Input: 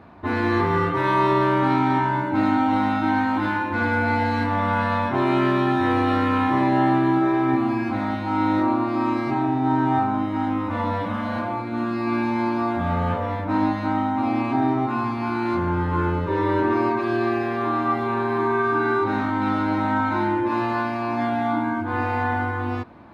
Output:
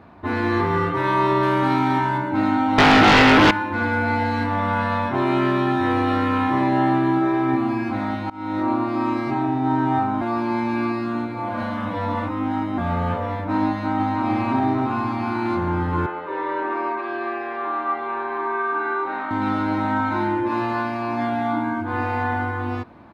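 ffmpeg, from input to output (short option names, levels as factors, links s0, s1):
-filter_complex "[0:a]asettb=1/sr,asplit=3[s0][s1][s2];[s0]atrim=end=1.434[s3];[s1]atrim=start=1.43:end=2.18,asetpts=PTS-STARTPTS,afade=t=in:d=0.004:c=qsin,afade=t=out:st=0.746:d=0.004:c=qsin,highshelf=f=4000:g=7[s4];[s2]atrim=start=2.176[s5];[s3][s4]acrossfade=d=0.004:c1=hsin:c2=qsin[s6];[s6][s5]acrossfade=d=0.004:c1=qsin:c2=hsin,asettb=1/sr,asplit=3[s7][s8][s9];[s7]atrim=end=2.784[s10];[s8]atrim=start=2.78:end=3.51,asetpts=PTS-STARTPTS,afade=t=in:d=0.004:c=qsin,afade=t=out:st=0.726:d=0.004:c=qsin,aeval=exprs='0.335*sin(PI/2*4.47*val(0)/0.335)':c=same[s11];[s9]atrim=start=3.506[s12];[s10][s11]acrossfade=d=0.004:c1=hsin:c2=qsin[s13];[s13][s12]acrossfade=d=0.004:c1=qsin:c2=hsin,asplit=2[s14][s15];[s15]afade=t=in:st=13.69:d=0.01,afade=t=out:st=14.29:d=0.01,aecho=0:1:300|600|900|1200|1500|1800|2100|2400|2700|3000|3300|3600:0.668344|0.501258|0.375943|0.281958|0.211468|0.158601|0.118951|0.0892131|0.0669099|0.0501824|0.0376368|0.0282276[s16];[s14][s16]amix=inputs=2:normalize=0,asettb=1/sr,asplit=3[s17][s18][s19];[s17]atrim=end=16.064[s20];[s18]atrim=start=16.06:end=19.31,asetpts=PTS-STARTPTS,afade=t=in:d=0.004:c=qsin,afade=t=out:st=3.246:d=0.004:c=qsin,highpass=520,lowpass=2700[s21];[s19]atrim=start=19.306[s22];[s20][s21]acrossfade=d=0.004:c1=hsin:c2=qsin[s23];[s23][s22]acrossfade=d=0.004:c1=qsin:c2=hsin,asplit=4[s24][s25][s26][s27];[s24]atrim=end=8.3,asetpts=PTS-STARTPTS,afade=t=out:st=8.296:d=0.004:c=hsin:silence=0.0668344[s28];[s25]atrim=start=8.3:end=10.212,asetpts=PTS-STARTPTS,afade=t=in:d=0.42:silence=0.0668344[s29];[s26]atrim=start=10.208:end=12.782,asetpts=PTS-STARTPTS,areverse[s30];[s27]atrim=start=12.778[s31];[s28][s29]concat=n=2:v=0:a=1[s32];[s32][s30]acrossfade=d=0.004:c1=hsin:c2=hsin[s33];[s33][s31]acrossfade=d=0.004:c1=hsin:c2=hsin"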